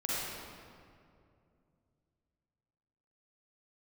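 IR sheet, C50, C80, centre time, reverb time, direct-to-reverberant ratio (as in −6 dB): −6.0 dB, −2.5 dB, 159 ms, 2.4 s, −8.0 dB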